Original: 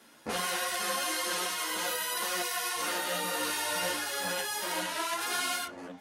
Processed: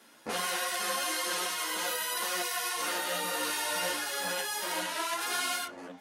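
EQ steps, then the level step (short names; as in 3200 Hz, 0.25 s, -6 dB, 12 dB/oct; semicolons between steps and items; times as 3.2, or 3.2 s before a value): low shelf 130 Hz -9.5 dB; 0.0 dB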